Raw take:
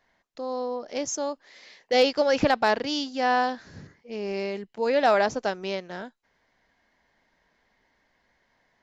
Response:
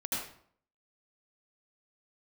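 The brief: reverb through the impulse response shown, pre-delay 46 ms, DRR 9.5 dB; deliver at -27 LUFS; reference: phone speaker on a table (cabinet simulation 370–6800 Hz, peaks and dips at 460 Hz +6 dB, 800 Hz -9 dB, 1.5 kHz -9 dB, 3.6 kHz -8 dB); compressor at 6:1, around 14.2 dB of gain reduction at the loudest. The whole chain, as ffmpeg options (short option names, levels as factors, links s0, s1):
-filter_complex "[0:a]acompressor=threshold=0.0251:ratio=6,asplit=2[s0][s1];[1:a]atrim=start_sample=2205,adelay=46[s2];[s1][s2]afir=irnorm=-1:irlink=0,volume=0.2[s3];[s0][s3]amix=inputs=2:normalize=0,highpass=f=370:w=0.5412,highpass=f=370:w=1.3066,equalizer=f=460:t=q:w=4:g=6,equalizer=f=800:t=q:w=4:g=-9,equalizer=f=1500:t=q:w=4:g=-9,equalizer=f=3600:t=q:w=4:g=-8,lowpass=f=6800:w=0.5412,lowpass=f=6800:w=1.3066,volume=2.99"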